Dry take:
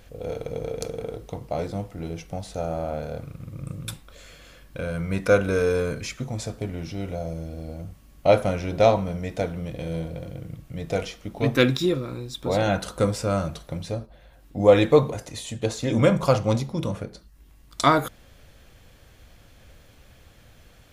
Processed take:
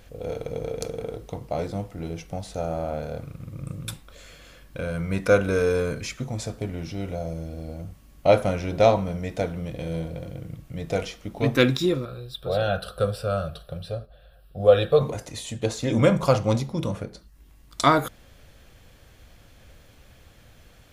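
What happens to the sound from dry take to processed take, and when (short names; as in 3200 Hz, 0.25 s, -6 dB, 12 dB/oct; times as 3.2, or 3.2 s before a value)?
12.05–15.01 fixed phaser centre 1400 Hz, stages 8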